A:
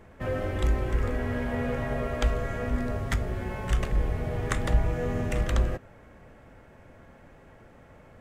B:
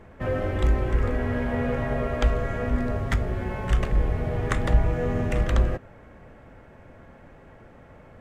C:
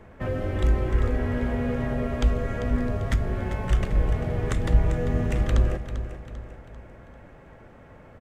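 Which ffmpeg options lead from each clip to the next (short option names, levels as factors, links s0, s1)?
-af "highshelf=f=4600:g=-8.5,volume=1.5"
-filter_complex "[0:a]acrossover=split=420|3000[s0][s1][s2];[s1]acompressor=threshold=0.02:ratio=6[s3];[s0][s3][s2]amix=inputs=3:normalize=0,aecho=1:1:394|788|1182|1576|1970:0.282|0.124|0.0546|0.024|0.0106"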